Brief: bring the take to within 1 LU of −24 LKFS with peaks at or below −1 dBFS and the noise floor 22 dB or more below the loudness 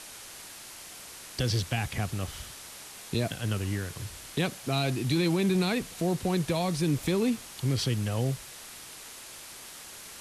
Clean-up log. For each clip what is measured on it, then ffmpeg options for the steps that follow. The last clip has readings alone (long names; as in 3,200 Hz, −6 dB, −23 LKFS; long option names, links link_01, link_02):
background noise floor −46 dBFS; target noise floor −52 dBFS; integrated loudness −29.5 LKFS; sample peak −15.5 dBFS; target loudness −24.0 LKFS
→ -af "afftdn=noise_reduction=6:noise_floor=-46"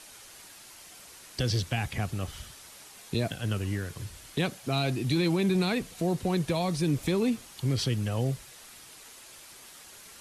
background noise floor −50 dBFS; target noise floor −52 dBFS
→ -af "afftdn=noise_reduction=6:noise_floor=-50"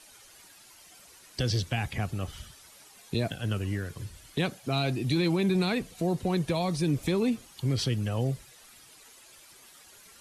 background noise floor −54 dBFS; integrated loudness −29.5 LKFS; sample peak −16.0 dBFS; target loudness −24.0 LKFS
→ -af "volume=5.5dB"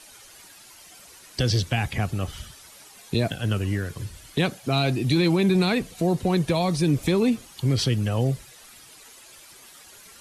integrated loudness −24.0 LKFS; sample peak −10.5 dBFS; background noise floor −49 dBFS